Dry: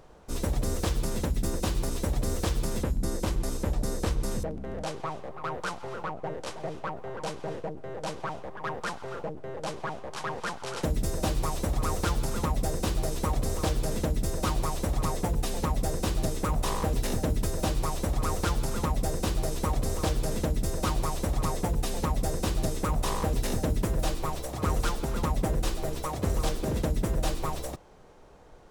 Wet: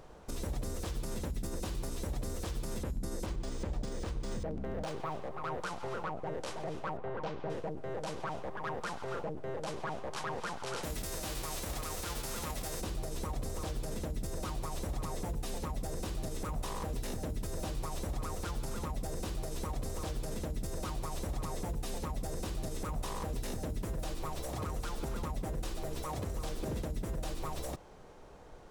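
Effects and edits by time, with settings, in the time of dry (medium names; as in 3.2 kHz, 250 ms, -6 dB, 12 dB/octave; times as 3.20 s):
3.26–5.22 s: decimation joined by straight lines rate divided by 3×
6.97–7.50 s: distance through air 220 m
10.83–12.80 s: formants flattened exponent 0.6
whole clip: compression, threshold -31 dBFS; peak limiter -28.5 dBFS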